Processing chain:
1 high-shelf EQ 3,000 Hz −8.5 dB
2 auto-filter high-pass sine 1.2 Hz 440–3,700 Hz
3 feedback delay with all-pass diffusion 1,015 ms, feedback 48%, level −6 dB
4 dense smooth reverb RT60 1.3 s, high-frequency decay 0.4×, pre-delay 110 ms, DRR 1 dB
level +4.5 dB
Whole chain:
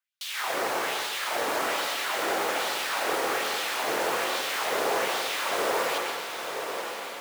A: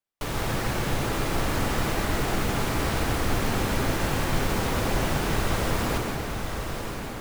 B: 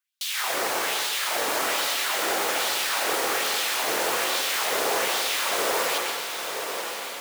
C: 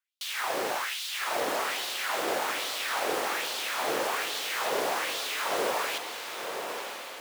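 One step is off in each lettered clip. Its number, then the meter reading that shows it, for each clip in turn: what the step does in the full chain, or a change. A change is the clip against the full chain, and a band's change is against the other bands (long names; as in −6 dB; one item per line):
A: 2, 125 Hz band +29.0 dB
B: 1, 8 kHz band +7.0 dB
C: 4, change in integrated loudness −2.0 LU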